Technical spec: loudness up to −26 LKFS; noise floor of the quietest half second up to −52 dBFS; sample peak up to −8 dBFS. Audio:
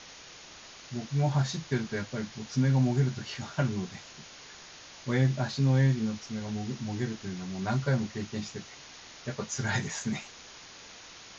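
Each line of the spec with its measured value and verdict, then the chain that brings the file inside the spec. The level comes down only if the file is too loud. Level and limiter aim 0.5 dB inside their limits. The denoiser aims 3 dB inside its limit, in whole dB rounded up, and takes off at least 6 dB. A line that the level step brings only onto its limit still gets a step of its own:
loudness −30.5 LKFS: in spec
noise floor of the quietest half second −49 dBFS: out of spec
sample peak −14.0 dBFS: in spec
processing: broadband denoise 6 dB, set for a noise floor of −49 dBFS

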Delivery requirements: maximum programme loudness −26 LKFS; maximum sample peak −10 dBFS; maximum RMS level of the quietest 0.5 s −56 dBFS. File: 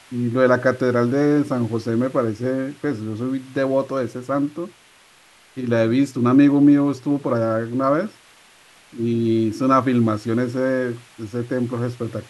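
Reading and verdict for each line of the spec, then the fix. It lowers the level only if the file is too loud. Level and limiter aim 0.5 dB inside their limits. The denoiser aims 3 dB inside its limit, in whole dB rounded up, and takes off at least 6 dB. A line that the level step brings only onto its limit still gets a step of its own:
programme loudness −20.5 LKFS: out of spec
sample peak −4.0 dBFS: out of spec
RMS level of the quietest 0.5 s −52 dBFS: out of spec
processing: level −6 dB
brickwall limiter −10.5 dBFS

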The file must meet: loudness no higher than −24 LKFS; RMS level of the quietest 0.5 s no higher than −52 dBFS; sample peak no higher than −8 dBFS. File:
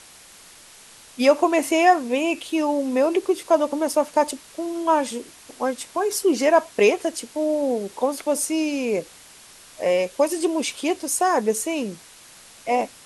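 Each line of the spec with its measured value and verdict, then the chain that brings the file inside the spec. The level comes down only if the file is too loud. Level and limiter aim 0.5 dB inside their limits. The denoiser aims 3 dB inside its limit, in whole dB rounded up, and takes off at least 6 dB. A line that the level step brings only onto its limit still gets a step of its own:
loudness −22.0 LKFS: out of spec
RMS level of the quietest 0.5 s −47 dBFS: out of spec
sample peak −5.0 dBFS: out of spec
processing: broadband denoise 6 dB, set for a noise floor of −47 dBFS
level −2.5 dB
brickwall limiter −8.5 dBFS

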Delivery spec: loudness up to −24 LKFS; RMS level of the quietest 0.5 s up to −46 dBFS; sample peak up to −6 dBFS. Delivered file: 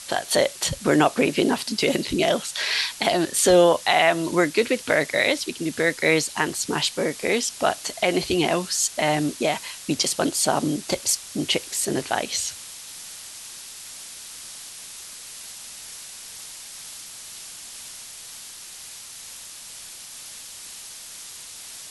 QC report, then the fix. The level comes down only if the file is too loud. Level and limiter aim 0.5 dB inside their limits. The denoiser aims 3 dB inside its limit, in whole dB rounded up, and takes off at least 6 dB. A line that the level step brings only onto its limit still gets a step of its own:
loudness −22.0 LKFS: out of spec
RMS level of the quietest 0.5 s −40 dBFS: out of spec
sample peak −5.0 dBFS: out of spec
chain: broadband denoise 7 dB, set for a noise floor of −40 dBFS
level −2.5 dB

